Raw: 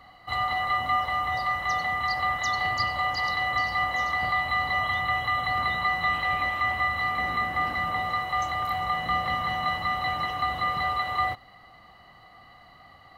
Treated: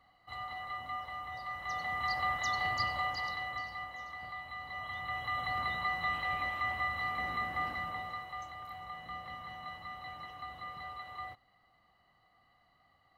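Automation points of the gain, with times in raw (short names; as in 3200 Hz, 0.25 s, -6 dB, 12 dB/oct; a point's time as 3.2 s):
1.41 s -15 dB
2.07 s -6.5 dB
2.95 s -6.5 dB
3.97 s -18 dB
4.6 s -18 dB
5.41 s -8.5 dB
7.64 s -8.5 dB
8.54 s -17.5 dB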